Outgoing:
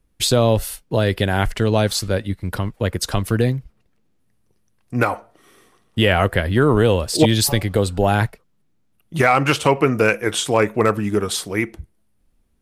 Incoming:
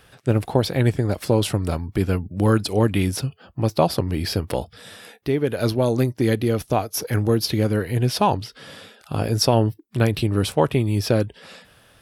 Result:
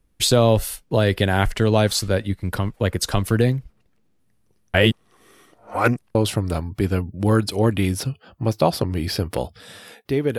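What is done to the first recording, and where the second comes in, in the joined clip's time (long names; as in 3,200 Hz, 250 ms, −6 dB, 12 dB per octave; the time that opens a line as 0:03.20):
outgoing
0:04.74–0:06.15: reverse
0:06.15: continue with incoming from 0:01.32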